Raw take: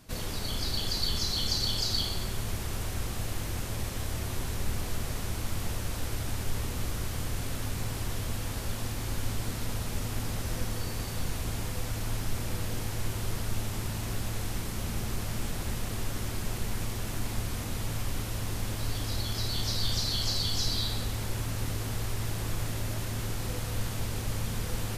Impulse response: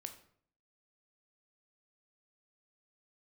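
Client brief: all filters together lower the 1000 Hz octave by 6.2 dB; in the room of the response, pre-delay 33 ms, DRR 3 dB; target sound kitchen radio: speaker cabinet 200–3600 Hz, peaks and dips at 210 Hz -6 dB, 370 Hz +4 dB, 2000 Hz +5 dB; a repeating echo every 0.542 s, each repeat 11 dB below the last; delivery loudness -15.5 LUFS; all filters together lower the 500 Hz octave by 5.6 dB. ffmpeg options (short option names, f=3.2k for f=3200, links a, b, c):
-filter_complex "[0:a]equalizer=f=500:t=o:g=-8,equalizer=f=1k:t=o:g=-6,aecho=1:1:542|1084|1626:0.282|0.0789|0.0221,asplit=2[a][b];[1:a]atrim=start_sample=2205,adelay=33[c];[b][c]afir=irnorm=-1:irlink=0,volume=1dB[d];[a][d]amix=inputs=2:normalize=0,highpass=200,equalizer=f=210:t=q:w=4:g=-6,equalizer=f=370:t=q:w=4:g=4,equalizer=f=2k:t=q:w=4:g=5,lowpass=f=3.6k:w=0.5412,lowpass=f=3.6k:w=1.3066,volume=23.5dB"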